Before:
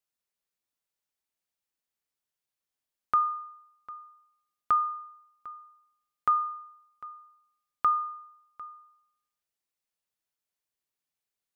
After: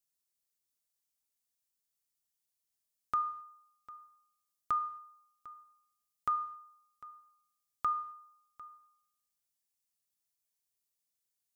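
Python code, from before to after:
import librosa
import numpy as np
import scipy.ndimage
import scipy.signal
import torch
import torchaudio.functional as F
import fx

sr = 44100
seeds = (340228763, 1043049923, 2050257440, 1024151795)

y = fx.bass_treble(x, sr, bass_db=5, treble_db=12)
y = fx.notch(y, sr, hz=1500.0, q=25.0)
y = fx.rev_gated(y, sr, seeds[0], gate_ms=290, shape='falling', drr_db=11.0)
y = y * 10.0 ** (-7.5 / 20.0)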